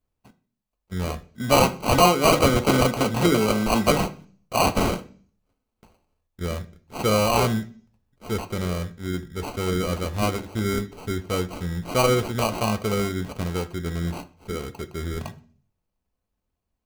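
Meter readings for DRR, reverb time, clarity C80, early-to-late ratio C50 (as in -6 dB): 6.5 dB, 0.45 s, 22.0 dB, 17.0 dB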